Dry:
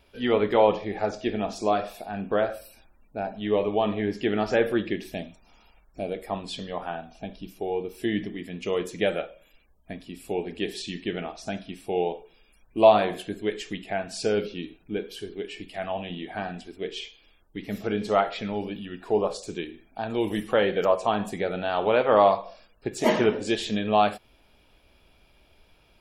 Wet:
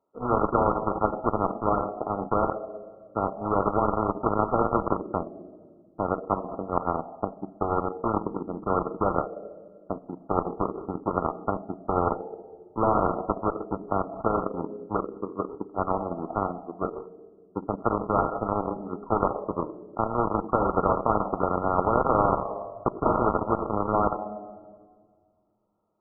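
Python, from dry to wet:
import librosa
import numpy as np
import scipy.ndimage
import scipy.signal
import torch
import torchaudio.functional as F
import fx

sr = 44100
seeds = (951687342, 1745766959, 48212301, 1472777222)

y = scipy.signal.sosfilt(scipy.signal.butter(2, 250.0, 'highpass', fs=sr, output='sos'), x)
y = fx.leveller(y, sr, passes=3)
y = fx.room_shoebox(y, sr, seeds[0], volume_m3=2200.0, walls='mixed', distance_m=0.57)
y = fx.cheby_harmonics(y, sr, harmonics=(3,), levels_db=(-10,), full_scale_db=-2.5)
y = fx.brickwall_lowpass(y, sr, high_hz=1400.0)
y = fx.spectral_comp(y, sr, ratio=4.0)
y = y * 10.0 ** (-4.0 / 20.0)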